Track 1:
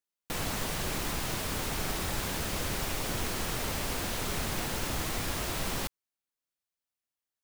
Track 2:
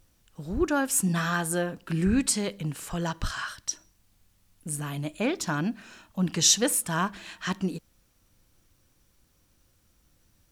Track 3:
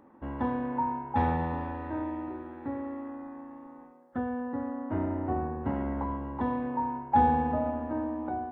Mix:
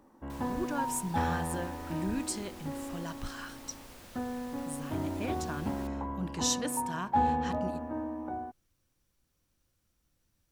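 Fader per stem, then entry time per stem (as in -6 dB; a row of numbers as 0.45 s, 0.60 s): -18.0 dB, -10.5 dB, -4.0 dB; 0.00 s, 0.00 s, 0.00 s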